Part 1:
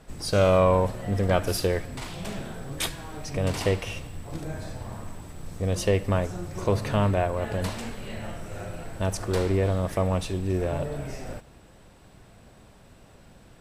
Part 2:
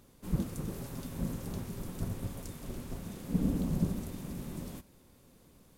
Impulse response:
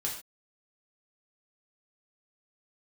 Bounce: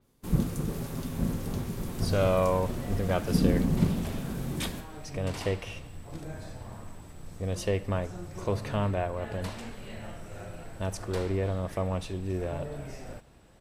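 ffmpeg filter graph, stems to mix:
-filter_complex "[0:a]adelay=1800,volume=0.531[s0];[1:a]agate=range=0.224:threshold=0.00316:ratio=16:detection=peak,volume=1.33,asplit=2[s1][s2];[s2]volume=0.473[s3];[2:a]atrim=start_sample=2205[s4];[s3][s4]afir=irnorm=-1:irlink=0[s5];[s0][s1][s5]amix=inputs=3:normalize=0,adynamicequalizer=threshold=0.00316:dfrequency=5100:dqfactor=0.7:tfrequency=5100:tqfactor=0.7:attack=5:release=100:ratio=0.375:range=2:mode=cutabove:tftype=highshelf"

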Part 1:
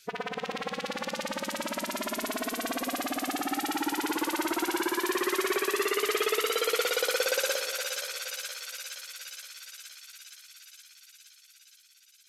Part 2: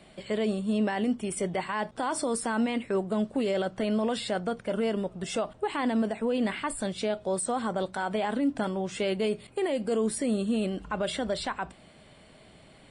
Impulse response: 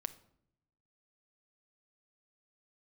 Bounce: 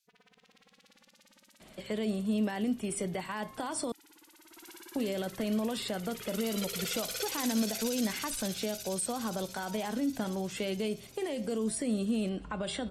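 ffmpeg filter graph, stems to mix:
-filter_complex "[0:a]equalizer=f=660:w=0.32:g=-14,alimiter=limit=0.0668:level=0:latency=1:release=105,volume=0.944,afade=t=in:st=4.43:d=0.26:silence=0.354813,afade=t=in:st=6.05:d=0.65:silence=0.316228[s0];[1:a]bandreject=f=133.4:t=h:w=4,bandreject=f=266.8:t=h:w=4,bandreject=f=400.2:t=h:w=4,bandreject=f=533.6:t=h:w=4,bandreject=f=667:t=h:w=4,bandreject=f=800.4:t=h:w=4,bandreject=f=933.8:t=h:w=4,bandreject=f=1067.2:t=h:w=4,bandreject=f=1200.6:t=h:w=4,bandreject=f=1334:t=h:w=4,bandreject=f=1467.4:t=h:w=4,bandreject=f=1600.8:t=h:w=4,bandreject=f=1734.2:t=h:w=4,bandreject=f=1867.6:t=h:w=4,bandreject=f=2001:t=h:w=4,bandreject=f=2134.4:t=h:w=4,bandreject=f=2267.8:t=h:w=4,bandreject=f=2401.2:t=h:w=4,bandreject=f=2534.6:t=h:w=4,bandreject=f=2668:t=h:w=4,bandreject=f=2801.4:t=h:w=4,bandreject=f=2934.8:t=h:w=4,bandreject=f=3068.2:t=h:w=4,bandreject=f=3201.6:t=h:w=4,bandreject=f=3335:t=h:w=4,bandreject=f=3468.4:t=h:w=4,bandreject=f=3601.8:t=h:w=4,bandreject=f=3735.2:t=h:w=4,bandreject=f=3868.6:t=h:w=4,bandreject=f=4002:t=h:w=4,bandreject=f=4135.4:t=h:w=4,bandreject=f=4268.8:t=h:w=4,bandreject=f=4402.2:t=h:w=4,adelay=1600,volume=0.841,asplit=3[s1][s2][s3];[s1]atrim=end=3.92,asetpts=PTS-STARTPTS,afade=t=out:st=3.916:d=0.004:c=hsin[s4];[s2]atrim=start=3.92:end=4.95,asetpts=PTS-STARTPTS,volume=0[s5];[s3]atrim=start=4.95,asetpts=PTS-STARTPTS,afade=t=in:d=0.004:c=hsin[s6];[s4][s5][s6]concat=n=3:v=0:a=1[s7];[s0][s7]amix=inputs=2:normalize=0,acrossover=split=260|3000[s8][s9][s10];[s9]acompressor=threshold=0.0158:ratio=3[s11];[s8][s11][s10]amix=inputs=3:normalize=0"

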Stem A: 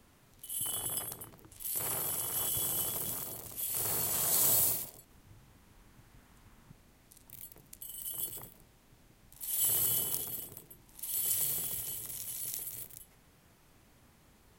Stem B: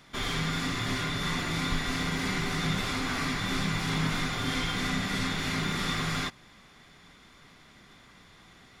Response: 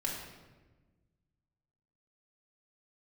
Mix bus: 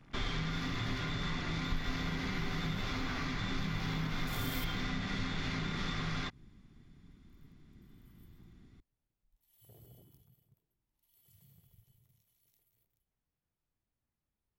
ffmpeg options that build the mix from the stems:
-filter_complex "[0:a]equalizer=f=9000:w=1.1:g=-13,volume=0.2[s0];[1:a]acompressor=threshold=0.0251:ratio=10,volume=0.75[s1];[s0][s1]amix=inputs=2:normalize=0,afwtdn=0.00224,lowshelf=f=120:g=8.5"

